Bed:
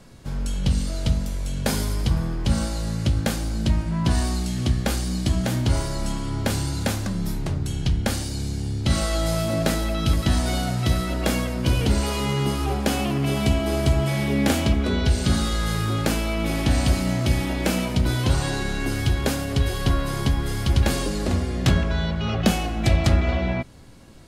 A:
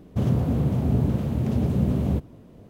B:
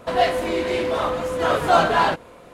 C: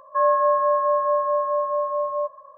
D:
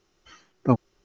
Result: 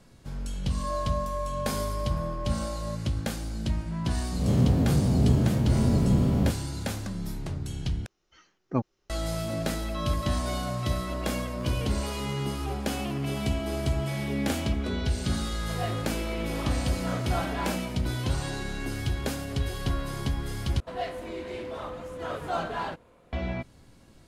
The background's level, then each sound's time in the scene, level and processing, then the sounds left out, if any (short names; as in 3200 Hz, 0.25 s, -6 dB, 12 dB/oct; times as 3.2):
bed -7.5 dB
0.69 add C -13.5 dB + spectral swells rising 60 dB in 0.53 s
4.32 add A -2 dB + spectral swells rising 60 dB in 0.64 s
8.06 replace with D -7 dB
9.8 add C -17.5 dB + stuck buffer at 1.8
15.62 add B -16 dB
20.8 replace with B -15 dB + low shelf 220 Hz +7.5 dB